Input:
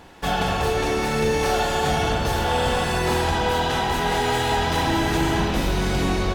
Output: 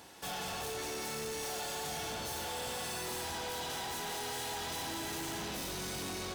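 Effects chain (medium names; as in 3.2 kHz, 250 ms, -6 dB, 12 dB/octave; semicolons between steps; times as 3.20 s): high-pass 72 Hz; tone controls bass -4 dB, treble +13 dB; band-stop 7 kHz, Q 24; saturation -29 dBFS, distortion -6 dB; trim -8.5 dB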